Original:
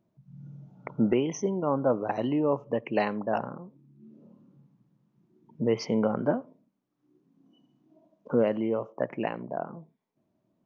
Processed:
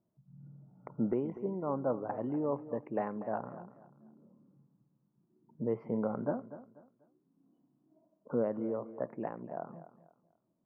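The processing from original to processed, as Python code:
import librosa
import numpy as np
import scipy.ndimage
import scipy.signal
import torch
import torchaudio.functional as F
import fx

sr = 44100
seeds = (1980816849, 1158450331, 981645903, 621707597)

p1 = scipy.signal.sosfilt(scipy.signal.butter(4, 1500.0, 'lowpass', fs=sr, output='sos'), x)
p2 = p1 + fx.echo_feedback(p1, sr, ms=244, feedback_pct=30, wet_db=-14.5, dry=0)
y = p2 * 10.0 ** (-7.5 / 20.0)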